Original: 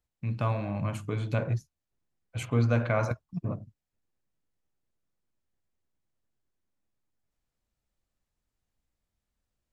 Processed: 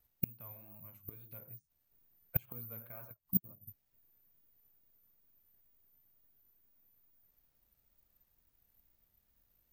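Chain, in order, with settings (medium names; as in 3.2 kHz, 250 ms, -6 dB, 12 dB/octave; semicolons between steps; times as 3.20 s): careless resampling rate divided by 3×, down filtered, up zero stuff; inverted gate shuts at -19 dBFS, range -32 dB; wow and flutter 87 cents; trim +4.5 dB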